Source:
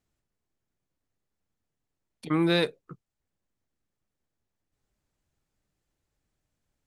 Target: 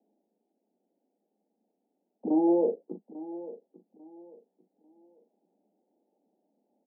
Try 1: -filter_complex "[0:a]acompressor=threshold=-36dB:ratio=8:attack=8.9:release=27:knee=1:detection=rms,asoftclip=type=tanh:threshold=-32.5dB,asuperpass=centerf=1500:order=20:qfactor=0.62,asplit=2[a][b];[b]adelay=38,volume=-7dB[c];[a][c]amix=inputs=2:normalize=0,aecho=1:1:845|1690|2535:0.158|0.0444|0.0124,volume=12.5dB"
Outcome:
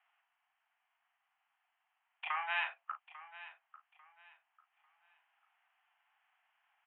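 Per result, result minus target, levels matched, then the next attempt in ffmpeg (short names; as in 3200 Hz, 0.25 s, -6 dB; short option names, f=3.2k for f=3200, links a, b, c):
500 Hz band -18.5 dB; compressor: peak gain reduction +8 dB
-filter_complex "[0:a]acompressor=threshold=-36dB:ratio=8:attack=8.9:release=27:knee=1:detection=rms,asoftclip=type=tanh:threshold=-32.5dB,asuperpass=centerf=410:order=20:qfactor=0.62,asplit=2[a][b];[b]adelay=38,volume=-7dB[c];[a][c]amix=inputs=2:normalize=0,aecho=1:1:845|1690|2535:0.158|0.0444|0.0124,volume=12.5dB"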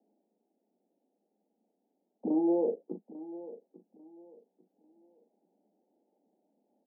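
compressor: peak gain reduction +8 dB
-filter_complex "[0:a]acompressor=threshold=-27dB:ratio=8:attack=8.9:release=27:knee=1:detection=rms,asoftclip=type=tanh:threshold=-32.5dB,asuperpass=centerf=410:order=20:qfactor=0.62,asplit=2[a][b];[b]adelay=38,volume=-7dB[c];[a][c]amix=inputs=2:normalize=0,aecho=1:1:845|1690|2535:0.158|0.0444|0.0124,volume=12.5dB"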